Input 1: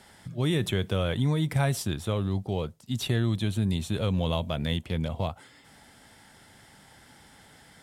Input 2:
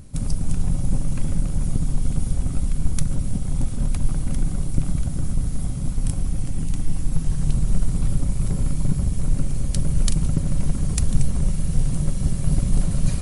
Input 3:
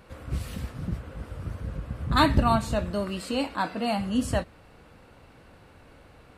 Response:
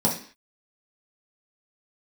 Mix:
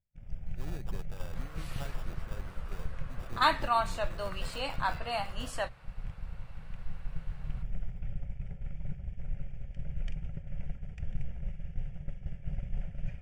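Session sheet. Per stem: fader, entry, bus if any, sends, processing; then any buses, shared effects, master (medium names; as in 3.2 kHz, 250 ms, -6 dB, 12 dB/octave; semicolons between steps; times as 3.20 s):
-12.0 dB, 0.20 s, bus A, no send, bass shelf 380 Hz -5 dB; sample-rate reducer 2.1 kHz, jitter 0%
-11.0 dB, 0.00 s, bus A, no send, low-pass 3.3 kHz 24 dB/octave; treble shelf 2.1 kHz +11 dB; static phaser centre 1.1 kHz, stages 6
-1.0 dB, 1.25 s, no bus, no send, high-pass 770 Hz 12 dB/octave; treble shelf 4.9 kHz -8 dB
bus A: 0.0 dB, expander -24 dBFS; compression 2:1, threshold -29 dBFS, peak gain reduction 5 dB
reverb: none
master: none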